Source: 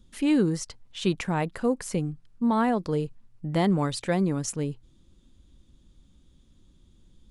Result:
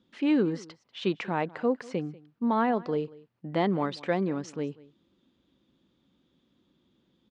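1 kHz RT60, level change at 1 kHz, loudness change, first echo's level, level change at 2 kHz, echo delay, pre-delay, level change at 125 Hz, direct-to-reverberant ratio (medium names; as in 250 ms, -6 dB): no reverb, -0.5 dB, -2.5 dB, -21.5 dB, -1.0 dB, 191 ms, no reverb, -7.5 dB, no reverb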